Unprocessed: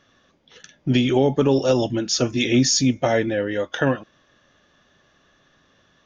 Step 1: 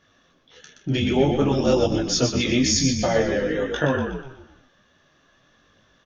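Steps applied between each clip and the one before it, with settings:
on a send: echo with shifted repeats 122 ms, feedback 49%, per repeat −42 Hz, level −6 dB
on the sum: micro pitch shift up and down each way 18 cents
level +2 dB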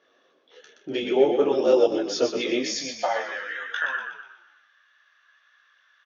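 low-pass filter 4,900 Hz 12 dB per octave
high-pass filter sweep 420 Hz → 1,500 Hz, 0:02.57–0:03.57
level −4 dB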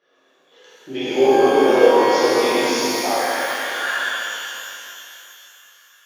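reverb with rising layers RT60 2.9 s, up +12 semitones, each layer −8 dB, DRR −10.5 dB
level −5 dB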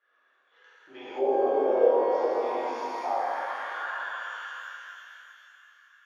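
in parallel at −3 dB: downward compressor, threshold −24 dBFS, peak gain reduction 16 dB
on the sum: envelope filter 590–1,500 Hz, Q 2.3, down, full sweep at −9.5 dBFS
level −6.5 dB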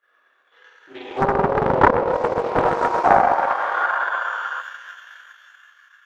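transient designer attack +5 dB, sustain −8 dB
gain on a spectral selection 0:02.56–0:04.61, 290–1,600 Hz +8 dB
highs frequency-modulated by the lows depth 0.98 ms
level +5.5 dB

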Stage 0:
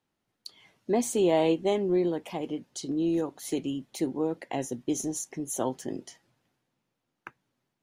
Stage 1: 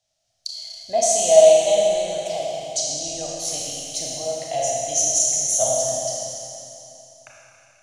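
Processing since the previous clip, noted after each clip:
drawn EQ curve 120 Hz 0 dB, 180 Hz −14 dB, 400 Hz −24 dB, 650 Hz +12 dB, 930 Hz −13 dB, 2,300 Hz −3 dB, 5,800 Hz +15 dB, 8,300 Hz +8 dB, 14,000 Hz −8 dB
four-comb reverb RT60 2.9 s, combs from 27 ms, DRR −4 dB
level +2 dB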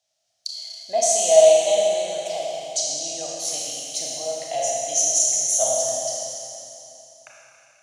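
high-pass filter 400 Hz 6 dB per octave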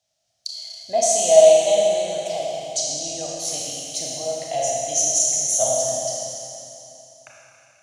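low-shelf EQ 250 Hz +11.5 dB

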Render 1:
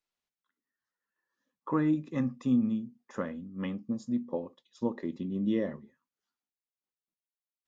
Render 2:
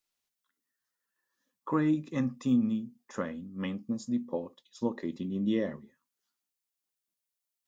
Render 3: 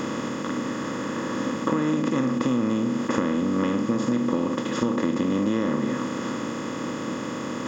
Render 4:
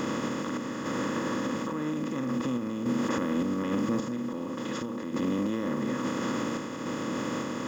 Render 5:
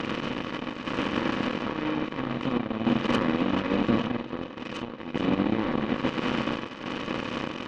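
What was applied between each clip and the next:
high-shelf EQ 3,700 Hz +9.5 dB
compressor on every frequency bin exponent 0.2; downward compressor, threshold −26 dBFS, peak gain reduction 8.5 dB; level +6 dB
brickwall limiter −21 dBFS, peak gain reduction 11 dB; bit reduction 10 bits; sample-and-hold tremolo; level +1.5 dB
hearing-aid frequency compression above 2,300 Hz 4 to 1; echo with a time of its own for lows and highs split 410 Hz, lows 113 ms, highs 440 ms, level −6 dB; harmonic generator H 7 −18 dB, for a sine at −15 dBFS; level +3.5 dB

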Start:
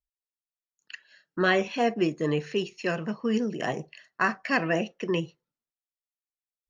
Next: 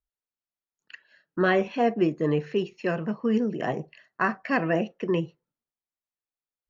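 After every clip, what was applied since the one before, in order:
low-pass filter 1,400 Hz 6 dB per octave
level +2.5 dB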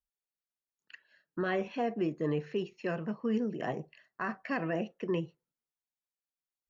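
brickwall limiter −16 dBFS, peak gain reduction 6 dB
level −6.5 dB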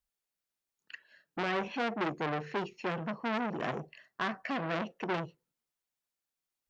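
saturating transformer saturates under 1,500 Hz
level +4.5 dB

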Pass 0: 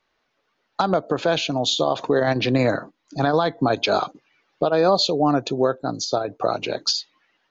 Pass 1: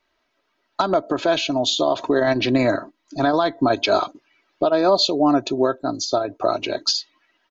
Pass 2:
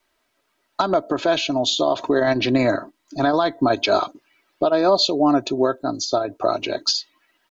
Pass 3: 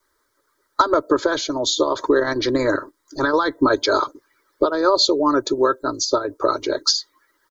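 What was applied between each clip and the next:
comb filter 3.1 ms, depth 57%
bit-depth reduction 12 bits, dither none
harmonic and percussive parts rebalanced percussive +8 dB; phaser with its sweep stopped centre 720 Hz, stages 6

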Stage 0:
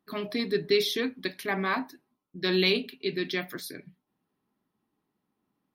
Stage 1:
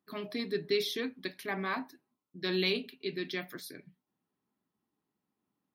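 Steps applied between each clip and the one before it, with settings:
high-pass filter 50 Hz
level −6 dB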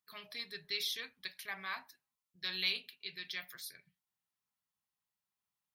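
guitar amp tone stack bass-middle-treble 10-0-10
level +1 dB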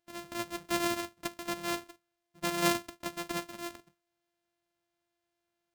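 samples sorted by size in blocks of 128 samples
level +7 dB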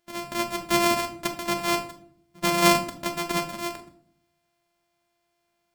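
rectangular room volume 930 cubic metres, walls furnished, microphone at 1.3 metres
level +8 dB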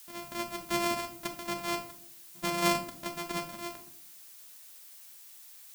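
background noise blue −43 dBFS
level −8.5 dB

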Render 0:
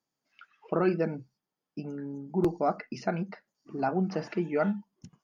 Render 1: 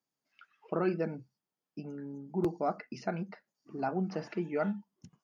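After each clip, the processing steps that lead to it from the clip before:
high-pass filter 49 Hz
level −4.5 dB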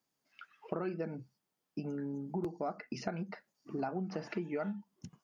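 downward compressor 6 to 1, threshold −39 dBFS, peak gain reduction 13.5 dB
level +5 dB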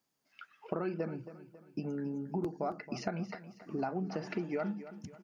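repeating echo 273 ms, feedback 44%, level −14 dB
level +1.5 dB

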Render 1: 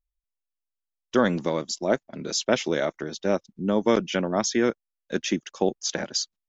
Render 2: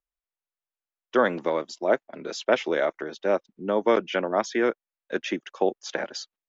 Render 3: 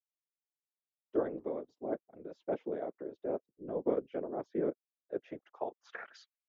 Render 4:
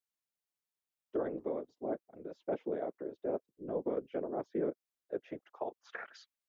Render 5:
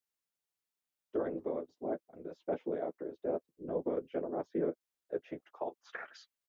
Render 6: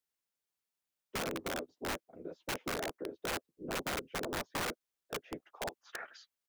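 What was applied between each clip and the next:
three-way crossover with the lows and the highs turned down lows −16 dB, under 320 Hz, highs −16 dB, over 3,100 Hz; level +2.5 dB
band-pass filter sweep 380 Hz → 2,300 Hz, 0:05.05–0:06.30; random phases in short frames; level −7 dB
brickwall limiter −26 dBFS, peak gain reduction 8 dB; level +1 dB
double-tracking delay 12 ms −9 dB
wrap-around overflow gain 30.5 dB

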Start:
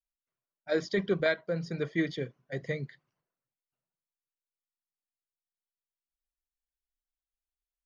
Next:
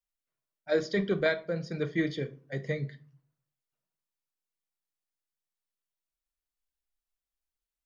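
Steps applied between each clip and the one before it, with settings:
rectangular room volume 280 cubic metres, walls furnished, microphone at 0.54 metres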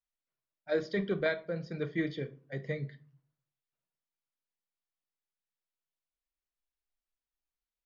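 low-pass filter 4,500 Hz 12 dB per octave
level −3.5 dB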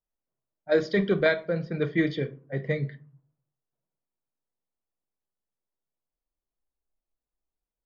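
low-pass that shuts in the quiet parts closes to 740 Hz, open at −28 dBFS
level +8 dB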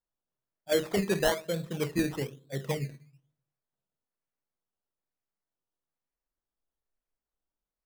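sample-and-hold swept by an LFO 16×, swing 60% 1.1 Hz
level −4 dB

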